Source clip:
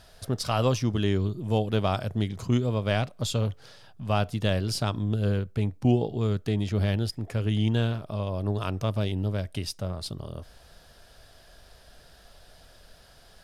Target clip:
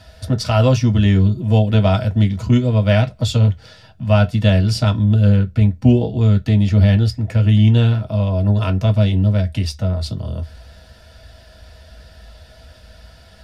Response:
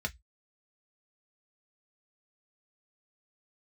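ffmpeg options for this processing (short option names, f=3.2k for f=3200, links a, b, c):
-filter_complex "[1:a]atrim=start_sample=2205[a];[0:a][a]afir=irnorm=-1:irlink=0,volume=4.5dB"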